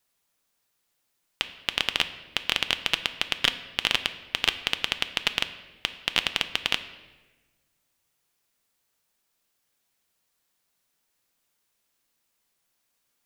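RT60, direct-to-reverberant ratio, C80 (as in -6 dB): 1.2 s, 9.5 dB, 14.5 dB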